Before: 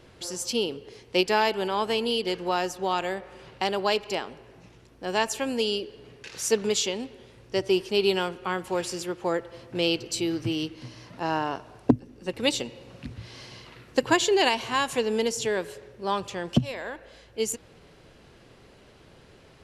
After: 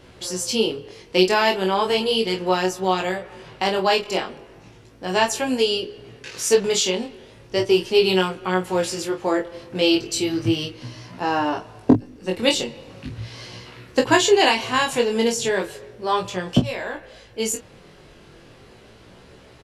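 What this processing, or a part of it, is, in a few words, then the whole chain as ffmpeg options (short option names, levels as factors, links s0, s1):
double-tracked vocal: -filter_complex "[0:a]asplit=2[s0][s1];[s1]adelay=27,volume=0.447[s2];[s0][s2]amix=inputs=2:normalize=0,flanger=delay=16:depth=5.5:speed=0.36,volume=2.51"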